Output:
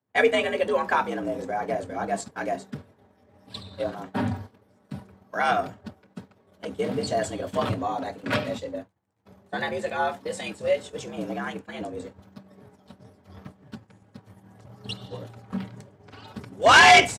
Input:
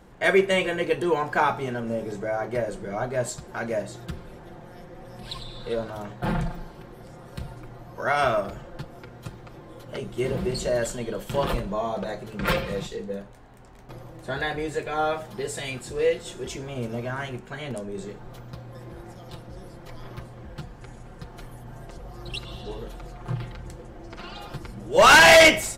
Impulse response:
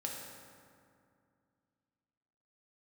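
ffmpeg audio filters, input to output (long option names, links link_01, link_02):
-filter_complex "[0:a]acrossover=split=9300[link_01][link_02];[link_02]acompressor=threshold=-60dB:ratio=4:attack=1:release=60[link_03];[link_01][link_03]amix=inputs=2:normalize=0,afreqshift=72,agate=range=-33dB:threshold=-32dB:ratio=3:detection=peak,atempo=1.5"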